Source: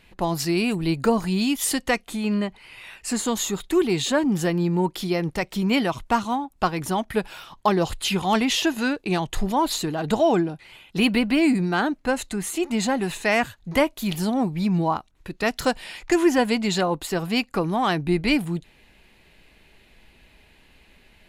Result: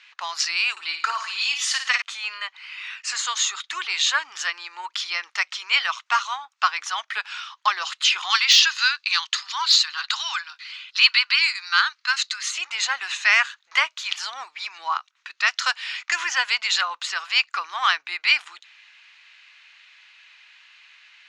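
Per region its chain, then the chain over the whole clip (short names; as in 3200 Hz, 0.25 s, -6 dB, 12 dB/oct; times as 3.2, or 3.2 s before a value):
0.71–2.02 notch comb 240 Hz + flutter echo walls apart 9.5 m, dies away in 0.45 s
8.3–12.52 steep high-pass 960 Hz + bell 4500 Hz +10.5 dB 0.57 oct
whole clip: elliptic band-pass 1200–6300 Hz, stop band 70 dB; de-esser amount 45%; gain +8 dB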